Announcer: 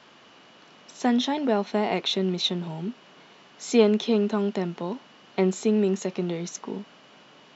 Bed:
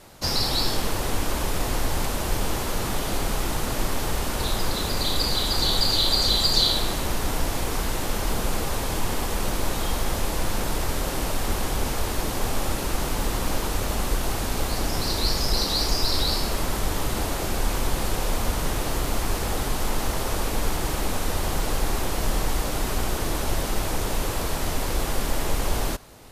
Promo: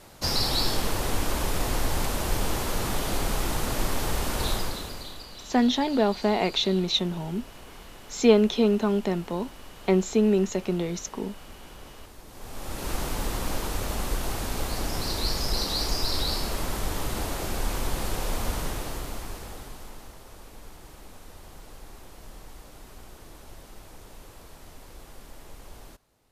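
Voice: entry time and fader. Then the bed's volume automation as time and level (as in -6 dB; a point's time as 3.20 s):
4.50 s, +1.0 dB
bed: 4.52 s -1.5 dB
5.28 s -21 dB
12.25 s -21 dB
12.90 s -4 dB
18.56 s -4 dB
20.20 s -21 dB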